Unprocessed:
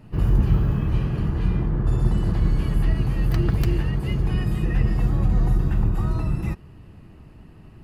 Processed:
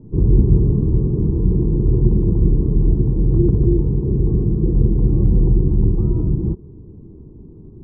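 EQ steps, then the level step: elliptic low-pass 1000 Hz, stop band 70 dB; air absorption 290 m; resonant low shelf 520 Hz +8.5 dB, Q 3; -2.5 dB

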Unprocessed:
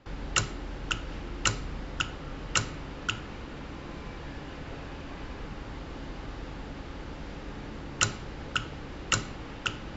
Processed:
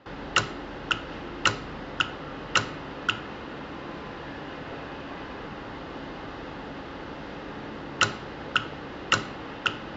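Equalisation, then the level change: HPF 320 Hz 6 dB/oct; air absorption 160 m; notch 2300 Hz, Q 12; +7.5 dB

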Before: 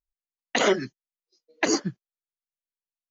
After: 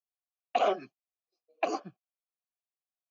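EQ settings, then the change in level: vowel filter a; low shelf 280 Hz +5.5 dB; +5.0 dB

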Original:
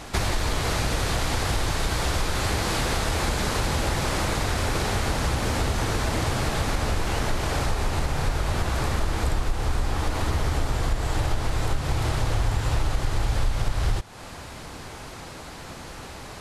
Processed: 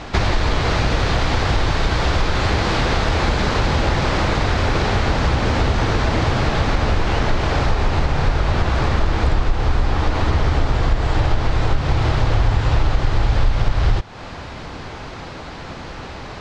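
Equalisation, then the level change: air absorption 170 m; bell 5300 Hz +2.5 dB 1.6 oct; +7.5 dB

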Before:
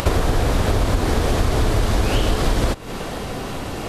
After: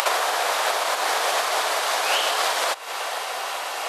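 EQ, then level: HPF 670 Hz 24 dB/oct; +5.0 dB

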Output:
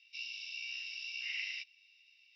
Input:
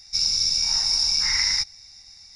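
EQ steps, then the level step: Butterworth band-pass 2800 Hz, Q 6.6; +9.5 dB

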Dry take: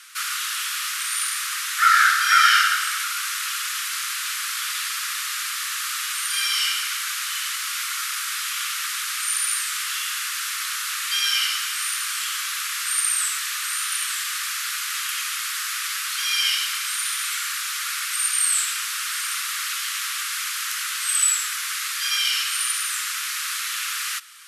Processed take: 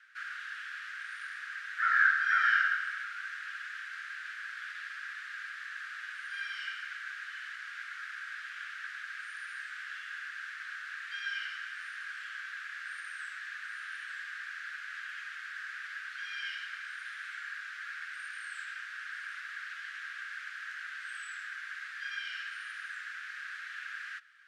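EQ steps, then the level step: ladder band-pass 1700 Hz, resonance 80%; -7.0 dB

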